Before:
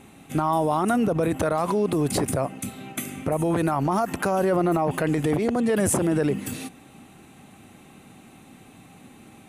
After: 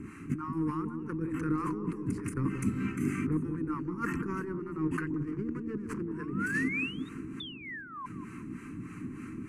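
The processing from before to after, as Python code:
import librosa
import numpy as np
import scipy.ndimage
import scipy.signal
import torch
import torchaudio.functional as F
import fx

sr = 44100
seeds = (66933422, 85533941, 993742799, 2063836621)

p1 = fx.median_filter(x, sr, points=25, at=(5.12, 6.07))
p2 = fx.spec_paint(p1, sr, seeds[0], shape='rise', start_s=5.79, length_s=1.3, low_hz=550.0, high_hz=3800.0, level_db=-34.0)
p3 = 10.0 ** (-29.5 / 20.0) * np.tanh(p2 / 10.0 ** (-29.5 / 20.0))
p4 = p2 + (p3 * 10.0 ** (-3.5 / 20.0))
p5 = fx.fixed_phaser(p4, sr, hz=1500.0, stages=4)
p6 = fx.spec_paint(p5, sr, seeds[1], shape='fall', start_s=7.4, length_s=0.66, low_hz=1000.0, high_hz=3600.0, level_db=-23.0)
p7 = fx.over_compress(p6, sr, threshold_db=-30.0, ratio=-0.5)
p8 = scipy.signal.sosfilt(scipy.signal.butter(2, 5700.0, 'lowpass', fs=sr, output='sos'), p7)
p9 = fx.peak_eq(p8, sr, hz=4500.0, db=-3.5, octaves=2.2)
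p10 = fx.harmonic_tremolo(p9, sr, hz=3.3, depth_pct=70, crossover_hz=520.0)
p11 = scipy.signal.sosfilt(scipy.signal.cheby1(2, 1.0, [420.0, 1100.0], 'bandstop', fs=sr, output='sos'), p10)
p12 = fx.peak_eq(p11, sr, hz=310.0, db=8.5, octaves=0.2)
y = fx.echo_bbd(p12, sr, ms=182, stages=1024, feedback_pct=66, wet_db=-6.0)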